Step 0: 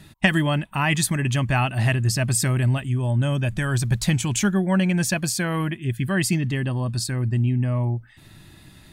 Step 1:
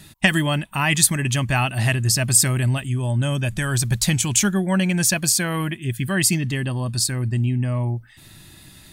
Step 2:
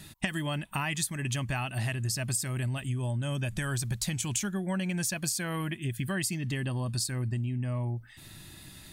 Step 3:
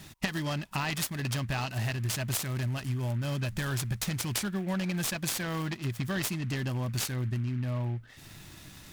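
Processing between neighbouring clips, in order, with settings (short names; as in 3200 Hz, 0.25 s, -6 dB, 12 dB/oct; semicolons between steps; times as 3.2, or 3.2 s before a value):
high shelf 3700 Hz +10 dB
compressor 10:1, threshold -25 dBFS, peak gain reduction 15 dB; gain -3 dB
noise-modulated delay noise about 1700 Hz, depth 0.04 ms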